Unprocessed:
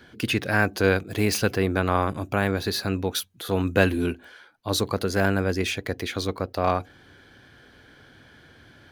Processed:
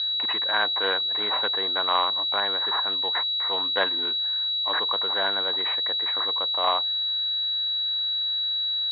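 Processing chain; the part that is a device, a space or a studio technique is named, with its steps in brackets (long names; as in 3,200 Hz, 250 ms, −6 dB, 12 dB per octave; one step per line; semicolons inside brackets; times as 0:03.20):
toy sound module (linearly interpolated sample-rate reduction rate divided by 8×; switching amplifier with a slow clock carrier 3,900 Hz; loudspeaker in its box 740–4,600 Hz, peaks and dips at 1,000 Hz +8 dB, 1,900 Hz +6 dB, 3,400 Hz +10 dB)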